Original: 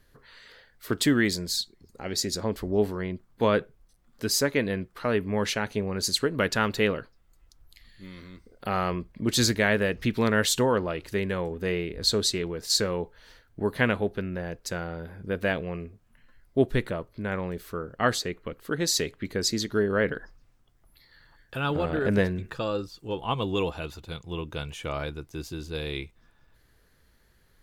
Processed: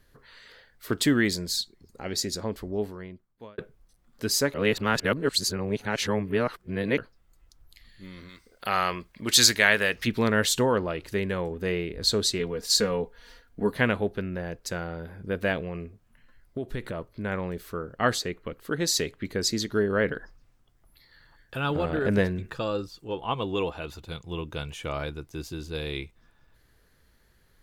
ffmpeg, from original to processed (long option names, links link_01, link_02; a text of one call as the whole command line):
ffmpeg -i in.wav -filter_complex "[0:a]asplit=3[link_01][link_02][link_03];[link_01]afade=type=out:start_time=8.28:duration=0.02[link_04];[link_02]tiltshelf=frequency=710:gain=-8,afade=type=in:start_time=8.28:duration=0.02,afade=type=out:start_time=10.06:duration=0.02[link_05];[link_03]afade=type=in:start_time=10.06:duration=0.02[link_06];[link_04][link_05][link_06]amix=inputs=3:normalize=0,asettb=1/sr,asplit=3[link_07][link_08][link_09];[link_07]atrim=end=12.394[link_10];[link_08]atrim=start=12.39:end=13.72,asetpts=PTS-STARTPTS,afade=type=in:duration=0.004:curve=qsin,afade=type=out:start_time=1.326:duration=0.004:curve=qsin,aecho=1:1:4.2:0.65,atrim=end_sample=58653[link_11];[link_09]atrim=start=13.716[link_12];[link_10][link_11]acrossfade=duration=0.004:curve1=hsin:curve2=qsin[link_13];[link_13][link_12]acrossfade=duration=0.004:curve1=qsin:curve2=hsin,asettb=1/sr,asplit=3[link_14][link_15][link_16];[link_14]atrim=end=15.644[link_17];[link_15]atrim=start=15.64:end=17.1,asetpts=PTS-STARTPTS,afade=type=in:duration=0.004:curve=qsin,afade=type=out:start_time=1.456:duration=0.004:curve=qsin,acompressor=threshold=-28dB:ratio=6:attack=3.2:release=140:knee=1:detection=peak[link_18];[link_16]atrim=start=17.096[link_19];[link_17][link_18]acrossfade=duration=0.004:curve1=hsin:curve2=qsin[link_20];[link_20][link_19]acrossfade=duration=0.004:curve1=qsin:curve2=hsin,asettb=1/sr,asplit=3[link_21][link_22][link_23];[link_21]atrim=end=23.044[link_24];[link_22]atrim=start=23.04:end=23.88,asetpts=PTS-STARTPTS,afade=type=in:duration=0.004:curve=qsin,afade=type=out:start_time=0.836:duration=0.004:curve=qsin,bass=frequency=250:gain=-4,treble=frequency=4000:gain=-6[link_25];[link_23]atrim=start=23.876[link_26];[link_24][link_25]acrossfade=duration=0.004:curve1=hsin:curve2=qsin[link_27];[link_27][link_26]acrossfade=duration=0.004:curve1=qsin:curve2=hsin,asplit=4[link_28][link_29][link_30][link_31];[link_28]atrim=end=3.58,asetpts=PTS-STARTPTS,afade=type=out:start_time=2.08:duration=1.5[link_32];[link_29]atrim=start=3.58:end=4.542,asetpts=PTS-STARTPTS,afade=type=in:duration=0.004:curve=hsin[link_33];[link_30]atrim=start=4.538:end=6.982,asetpts=PTS-STARTPTS,areverse[link_34];[link_31]atrim=start=6.978[link_35];[link_32][link_33]concat=n=2:v=0:a=1[link_36];[link_36][link_34]acrossfade=duration=0.004:curve1=hsin:curve2=hsin[link_37];[link_37][link_35]acrossfade=duration=0.004:curve1=hsin:curve2=hsin" out.wav